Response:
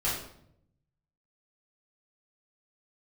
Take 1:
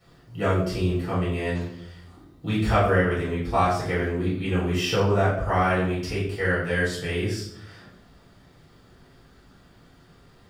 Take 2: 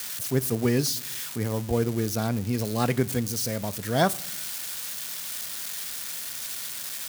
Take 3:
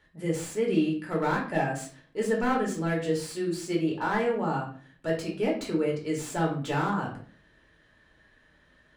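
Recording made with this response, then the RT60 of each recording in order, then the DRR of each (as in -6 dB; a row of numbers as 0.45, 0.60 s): 1; 0.70, 1.0, 0.45 s; -9.0, 16.5, -2.5 dB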